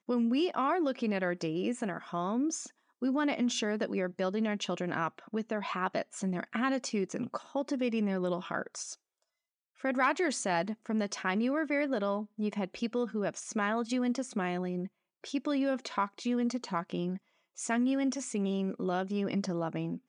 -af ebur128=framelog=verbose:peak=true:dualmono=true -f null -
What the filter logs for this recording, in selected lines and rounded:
Integrated loudness:
  I:         -29.7 LUFS
  Threshold: -39.9 LUFS
Loudness range:
  LRA:         2.1 LU
  Threshold: -50.1 LUFS
  LRA low:   -31.1 LUFS
  LRA high:  -29.0 LUFS
True peak:
  Peak:      -15.3 dBFS